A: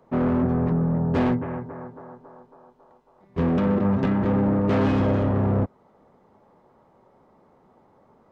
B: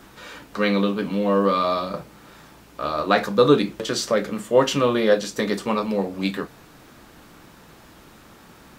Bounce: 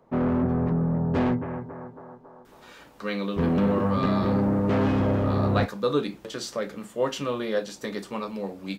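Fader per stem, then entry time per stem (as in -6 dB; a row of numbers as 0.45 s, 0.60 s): -2.0 dB, -9.0 dB; 0.00 s, 2.45 s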